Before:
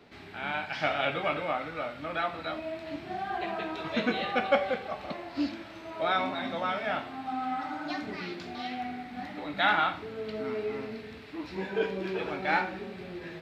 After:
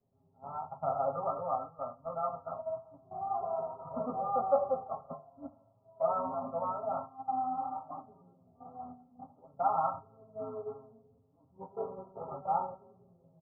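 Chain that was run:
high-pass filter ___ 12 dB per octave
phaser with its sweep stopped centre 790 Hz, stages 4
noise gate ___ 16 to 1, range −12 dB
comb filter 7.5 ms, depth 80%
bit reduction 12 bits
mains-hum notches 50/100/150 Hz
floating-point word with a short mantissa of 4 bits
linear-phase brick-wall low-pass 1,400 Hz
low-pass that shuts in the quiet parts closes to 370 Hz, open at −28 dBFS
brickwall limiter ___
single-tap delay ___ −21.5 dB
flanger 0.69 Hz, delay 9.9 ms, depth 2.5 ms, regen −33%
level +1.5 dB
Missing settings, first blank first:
45 Hz, −39 dBFS, −14.5 dBFS, 76 ms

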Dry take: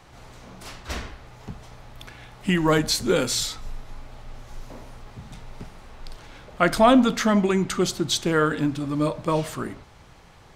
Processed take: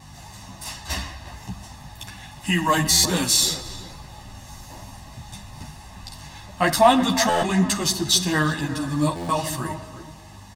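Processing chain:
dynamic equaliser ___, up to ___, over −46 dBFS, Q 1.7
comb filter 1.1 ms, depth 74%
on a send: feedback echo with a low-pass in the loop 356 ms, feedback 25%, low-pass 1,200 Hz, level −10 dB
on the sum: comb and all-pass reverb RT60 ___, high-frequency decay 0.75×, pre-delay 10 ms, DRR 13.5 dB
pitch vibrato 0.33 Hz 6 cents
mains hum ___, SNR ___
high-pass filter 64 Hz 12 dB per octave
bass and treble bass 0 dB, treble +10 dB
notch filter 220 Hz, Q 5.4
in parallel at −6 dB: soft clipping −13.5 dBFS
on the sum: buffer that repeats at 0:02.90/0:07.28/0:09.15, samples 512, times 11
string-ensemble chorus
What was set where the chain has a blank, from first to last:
7,200 Hz, −4 dB, 2.2 s, 50 Hz, 18 dB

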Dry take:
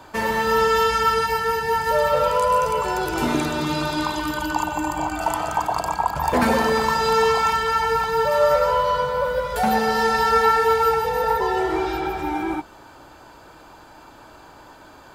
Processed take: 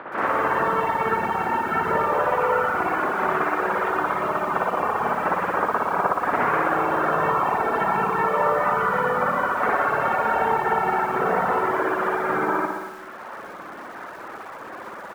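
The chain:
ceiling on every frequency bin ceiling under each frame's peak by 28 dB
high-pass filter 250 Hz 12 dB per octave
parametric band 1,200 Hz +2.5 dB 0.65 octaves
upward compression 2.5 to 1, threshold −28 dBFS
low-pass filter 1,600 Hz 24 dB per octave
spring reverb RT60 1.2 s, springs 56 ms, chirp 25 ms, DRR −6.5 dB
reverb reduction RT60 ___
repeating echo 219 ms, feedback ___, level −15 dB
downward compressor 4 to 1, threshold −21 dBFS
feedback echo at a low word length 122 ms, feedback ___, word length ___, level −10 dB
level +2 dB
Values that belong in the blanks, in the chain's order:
1.1 s, 36%, 35%, 7 bits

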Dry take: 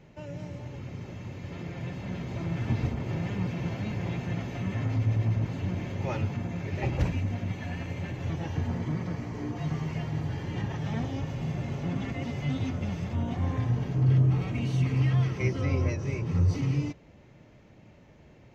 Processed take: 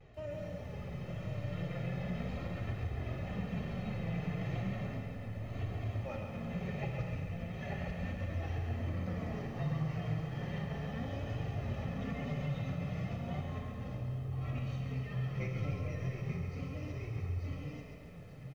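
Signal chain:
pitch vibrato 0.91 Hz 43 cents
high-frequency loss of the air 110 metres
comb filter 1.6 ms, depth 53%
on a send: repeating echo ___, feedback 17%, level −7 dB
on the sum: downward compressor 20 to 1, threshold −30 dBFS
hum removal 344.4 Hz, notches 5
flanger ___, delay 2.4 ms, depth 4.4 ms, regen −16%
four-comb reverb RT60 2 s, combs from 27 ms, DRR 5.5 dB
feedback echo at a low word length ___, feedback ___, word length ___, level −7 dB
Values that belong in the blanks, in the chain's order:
887 ms, 0.35 Hz, 137 ms, 55%, 11 bits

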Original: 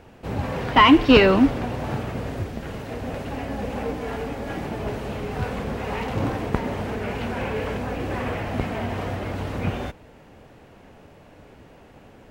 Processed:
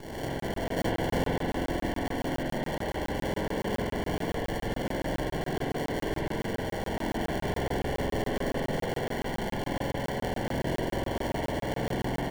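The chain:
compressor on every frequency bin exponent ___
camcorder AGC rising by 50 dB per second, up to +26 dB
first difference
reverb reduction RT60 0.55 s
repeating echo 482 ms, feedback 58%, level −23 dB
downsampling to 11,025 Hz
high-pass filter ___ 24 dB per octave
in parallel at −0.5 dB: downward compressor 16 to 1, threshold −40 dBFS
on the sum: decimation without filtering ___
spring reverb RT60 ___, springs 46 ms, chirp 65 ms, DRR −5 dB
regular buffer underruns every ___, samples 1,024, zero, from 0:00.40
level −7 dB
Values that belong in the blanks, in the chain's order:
0.4, 1,200 Hz, 35×, 3.3 s, 0.14 s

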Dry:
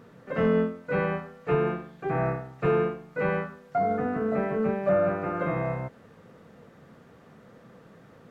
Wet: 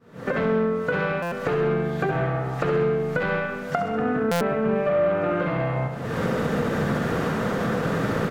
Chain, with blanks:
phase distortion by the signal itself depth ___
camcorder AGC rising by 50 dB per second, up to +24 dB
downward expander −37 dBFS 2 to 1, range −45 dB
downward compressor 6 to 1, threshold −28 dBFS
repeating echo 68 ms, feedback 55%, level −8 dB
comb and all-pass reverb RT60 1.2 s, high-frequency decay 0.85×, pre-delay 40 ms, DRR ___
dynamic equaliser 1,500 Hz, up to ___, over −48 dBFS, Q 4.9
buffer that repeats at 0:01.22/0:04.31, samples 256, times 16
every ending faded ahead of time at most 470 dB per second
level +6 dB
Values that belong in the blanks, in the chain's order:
0.17 ms, 10 dB, +3 dB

